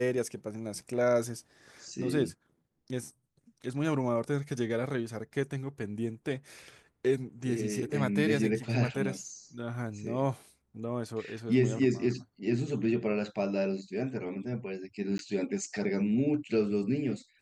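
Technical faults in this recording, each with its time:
15.18–15.19 s: dropout 12 ms

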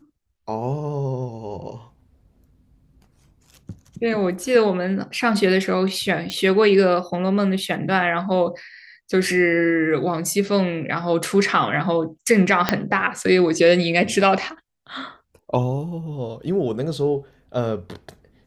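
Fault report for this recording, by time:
6.30 s: pop -12 dBFS
12.69 s: pop -2 dBFS

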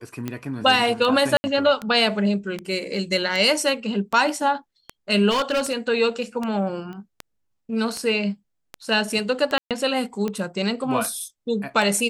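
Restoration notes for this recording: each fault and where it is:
tick 78 rpm -14 dBFS
1.37–1.44 s: dropout 70 ms
5.30–5.74 s: clipped -18 dBFS
6.93 s: pop -27 dBFS
9.58–9.71 s: dropout 127 ms

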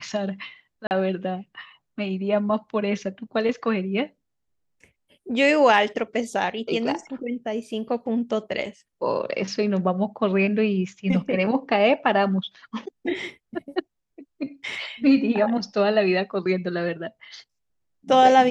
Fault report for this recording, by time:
0.87–0.91 s: dropout 39 ms

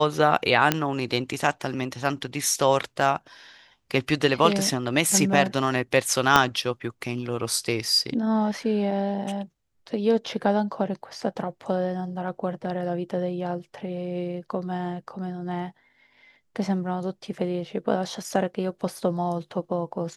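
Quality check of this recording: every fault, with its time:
0.72 s: pop -4 dBFS
6.36 s: pop -2 dBFS

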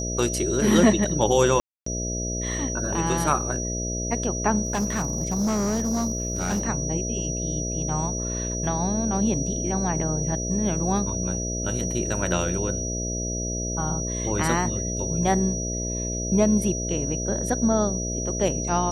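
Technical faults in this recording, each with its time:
buzz 60 Hz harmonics 11 -30 dBFS
whine 5.8 kHz -30 dBFS
1.60–1.86 s: dropout 264 ms
4.65–6.64 s: clipped -20.5 dBFS

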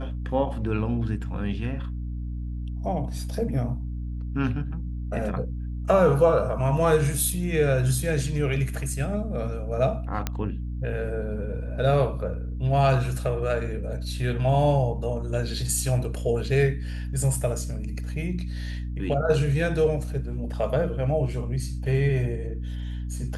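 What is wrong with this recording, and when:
hum 60 Hz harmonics 5 -31 dBFS
10.27 s: pop -11 dBFS

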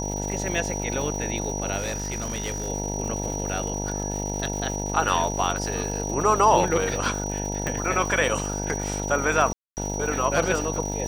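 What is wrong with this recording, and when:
buzz 50 Hz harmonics 19 -30 dBFS
crackle 300 per s -32 dBFS
whine 5.8 kHz -32 dBFS
1.77–2.69 s: clipped -24.5 dBFS
7.67 s: pop
9.53–9.77 s: dropout 239 ms

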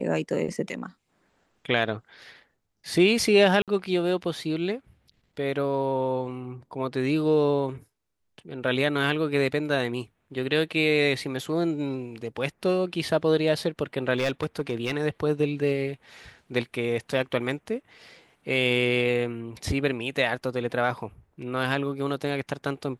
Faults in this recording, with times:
3.62–3.68 s: dropout 57 ms
14.16–14.92 s: clipped -20 dBFS

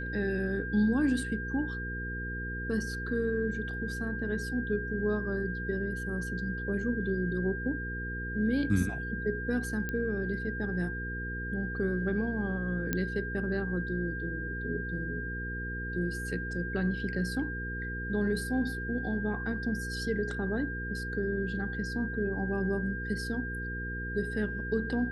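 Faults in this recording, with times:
hum 60 Hz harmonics 8 -38 dBFS
whine 1.6 kHz -37 dBFS
9.89 s: pop -21 dBFS
12.93 s: pop -15 dBFS

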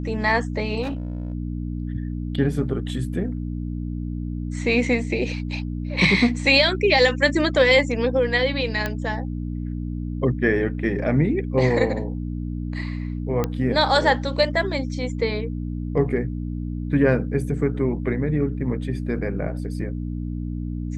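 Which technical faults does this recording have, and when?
hum 60 Hz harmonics 5 -28 dBFS
0.82–1.34 s: clipped -23.5 dBFS
8.86 s: pop -11 dBFS
13.44 s: pop -10 dBFS

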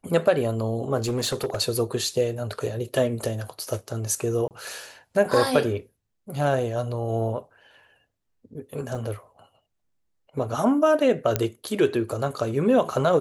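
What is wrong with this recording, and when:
0.97–1.61 s: clipped -21 dBFS
4.48–4.51 s: dropout 28 ms
8.95 s: dropout 3.5 ms
11.36 s: pop -6 dBFS

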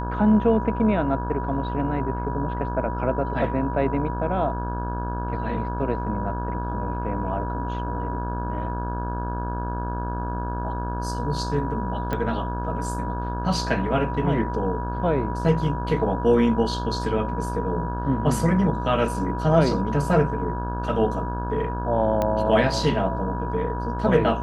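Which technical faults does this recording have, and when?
buzz 60 Hz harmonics 28 -29 dBFS
whine 970 Hz -31 dBFS
12.13 s: pop -15 dBFS
22.22 s: pop -12 dBFS

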